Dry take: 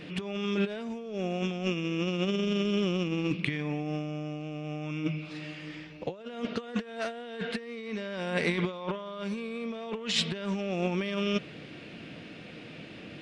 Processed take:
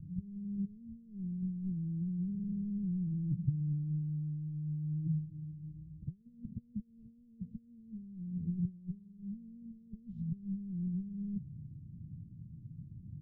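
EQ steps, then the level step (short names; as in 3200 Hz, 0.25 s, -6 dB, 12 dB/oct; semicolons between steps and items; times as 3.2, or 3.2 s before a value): inverse Chebyshev low-pass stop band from 590 Hz, stop band 70 dB; +9.0 dB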